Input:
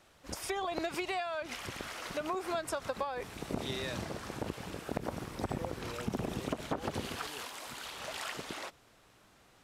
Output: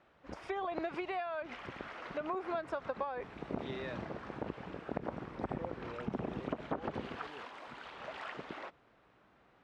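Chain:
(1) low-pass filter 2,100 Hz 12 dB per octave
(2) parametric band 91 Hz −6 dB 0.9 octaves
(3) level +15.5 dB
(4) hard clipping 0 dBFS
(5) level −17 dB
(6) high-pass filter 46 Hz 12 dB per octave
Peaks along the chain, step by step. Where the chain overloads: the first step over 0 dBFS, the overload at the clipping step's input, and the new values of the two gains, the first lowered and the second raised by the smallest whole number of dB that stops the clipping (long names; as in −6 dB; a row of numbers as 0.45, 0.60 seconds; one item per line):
−21.0, −20.0, −4.5, −4.5, −21.5, −20.5 dBFS
no step passes full scale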